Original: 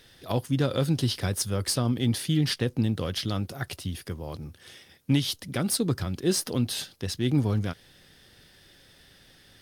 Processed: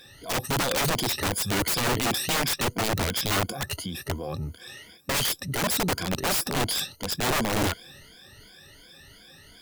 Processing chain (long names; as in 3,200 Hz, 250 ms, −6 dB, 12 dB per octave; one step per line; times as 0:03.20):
rippled gain that drifts along the octave scale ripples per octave 1.8, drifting +2.8 Hz, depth 22 dB
wrap-around overflow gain 19.5 dB
transient designer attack −2 dB, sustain +3 dB